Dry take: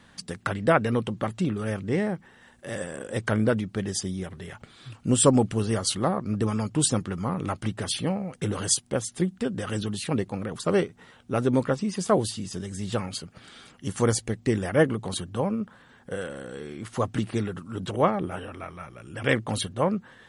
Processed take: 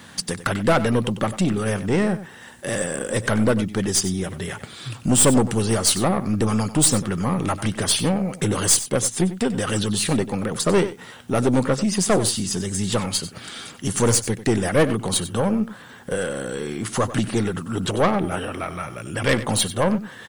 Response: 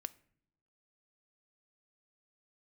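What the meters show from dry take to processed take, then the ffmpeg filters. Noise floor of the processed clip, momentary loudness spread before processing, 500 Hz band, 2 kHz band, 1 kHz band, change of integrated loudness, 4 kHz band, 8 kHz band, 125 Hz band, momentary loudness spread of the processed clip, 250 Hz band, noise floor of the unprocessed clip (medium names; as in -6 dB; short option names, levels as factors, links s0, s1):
-43 dBFS, 14 LU, +4.0 dB, +5.5 dB, +4.5 dB, +5.5 dB, +8.0 dB, +9.0 dB, +4.5 dB, 12 LU, +5.5 dB, -56 dBFS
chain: -filter_complex "[0:a]highpass=78,highshelf=f=5700:g=8.5,asplit=2[s0][s1];[s1]acompressor=threshold=0.0178:ratio=6,volume=0.75[s2];[s0][s2]amix=inputs=2:normalize=0,acrusher=bits=10:mix=0:aa=0.000001,aeval=exprs='(tanh(7.94*val(0)+0.3)-tanh(0.3))/7.94':c=same,asplit=2[s3][s4];[s4]aecho=0:1:94:0.2[s5];[s3][s5]amix=inputs=2:normalize=0,volume=2.11"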